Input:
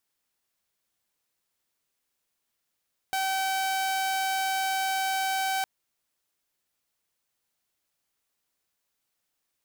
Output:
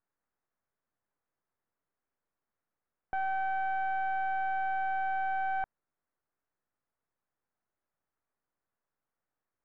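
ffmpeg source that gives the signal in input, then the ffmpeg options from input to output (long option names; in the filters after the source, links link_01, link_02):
-f lavfi -i "aevalsrc='0.0708*(2*mod(768*t,1)-1)':duration=2.51:sample_rate=44100"
-af "aeval=exprs='if(lt(val(0),0),0.447*val(0),val(0))':channel_layout=same,lowpass=frequency=1700:width=0.5412,lowpass=frequency=1700:width=1.3066"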